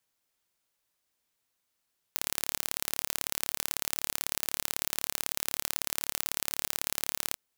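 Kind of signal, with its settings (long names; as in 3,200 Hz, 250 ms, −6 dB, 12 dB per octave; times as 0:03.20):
impulse train 36.1 per second, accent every 2, −1.5 dBFS 5.20 s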